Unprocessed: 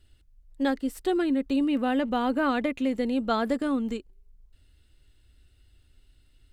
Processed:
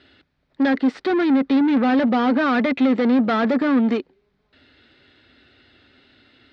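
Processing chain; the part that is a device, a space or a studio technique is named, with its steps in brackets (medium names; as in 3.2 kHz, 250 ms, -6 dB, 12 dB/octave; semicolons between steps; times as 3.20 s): overdrive pedal into a guitar cabinet (overdrive pedal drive 29 dB, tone 3 kHz, clips at -13 dBFS; cabinet simulation 110–4100 Hz, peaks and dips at 250 Hz +6 dB, 990 Hz -4 dB, 2.9 kHz -7 dB)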